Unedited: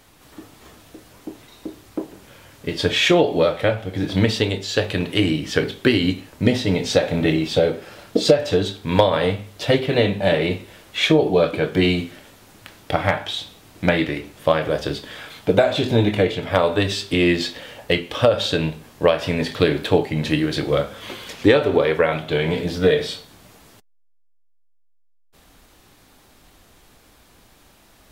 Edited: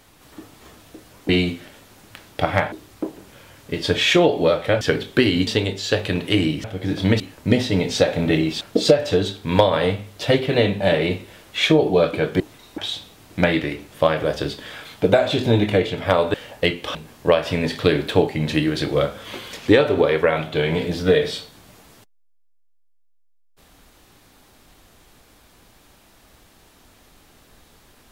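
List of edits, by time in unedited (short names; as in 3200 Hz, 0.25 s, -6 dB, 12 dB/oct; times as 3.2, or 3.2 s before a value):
1.29–1.67 swap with 11.8–13.23
3.76–4.32 swap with 5.49–6.15
7.56–8.01 cut
16.79–17.61 cut
18.22–18.71 cut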